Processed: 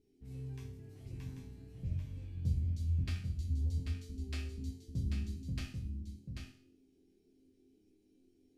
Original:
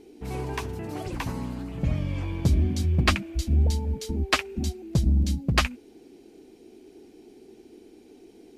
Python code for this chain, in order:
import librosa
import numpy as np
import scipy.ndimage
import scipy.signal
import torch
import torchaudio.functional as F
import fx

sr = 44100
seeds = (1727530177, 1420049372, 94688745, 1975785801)

y = fx.tone_stack(x, sr, knobs='10-0-1')
y = fx.resonator_bank(y, sr, root=41, chord='minor', decay_s=0.54)
y = y + 10.0 ** (-5.5 / 20.0) * np.pad(y, (int(789 * sr / 1000.0), 0))[:len(y)]
y = y * librosa.db_to_amplitude(15.0)